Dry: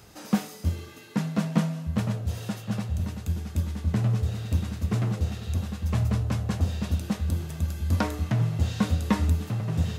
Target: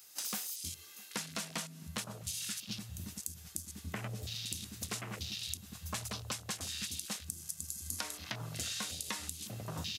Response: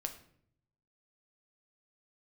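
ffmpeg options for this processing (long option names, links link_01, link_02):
-af "aderivative,aecho=1:1:657:0.133,afwtdn=0.002,equalizer=frequency=87:width_type=o:width=2.3:gain=3,acompressor=threshold=-54dB:ratio=10,volume=18dB"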